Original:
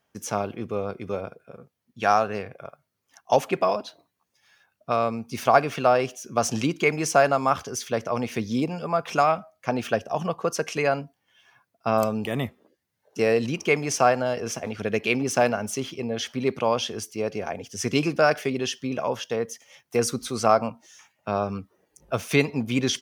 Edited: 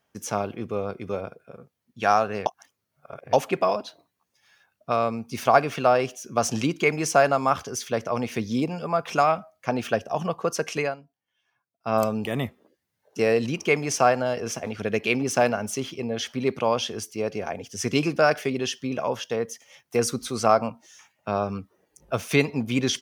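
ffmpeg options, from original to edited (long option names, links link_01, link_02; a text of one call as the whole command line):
ffmpeg -i in.wav -filter_complex "[0:a]asplit=5[link_01][link_02][link_03][link_04][link_05];[link_01]atrim=end=2.462[link_06];[link_02]atrim=start=2.458:end=3.332,asetpts=PTS-STARTPTS,areverse[link_07];[link_03]atrim=start=3.328:end=10.96,asetpts=PTS-STARTPTS,afade=type=out:start_time=7.462:duration=0.17:silence=0.16788[link_08];[link_04]atrim=start=10.96:end=11.79,asetpts=PTS-STARTPTS,volume=-15.5dB[link_09];[link_05]atrim=start=11.79,asetpts=PTS-STARTPTS,afade=type=in:duration=0.17:silence=0.16788[link_10];[link_06][link_07]acrossfade=duration=0.004:curve1=hsin:curve2=hsin[link_11];[link_08][link_09][link_10]concat=n=3:v=0:a=1[link_12];[link_11][link_12]acrossfade=duration=0.004:curve1=hsin:curve2=hsin" out.wav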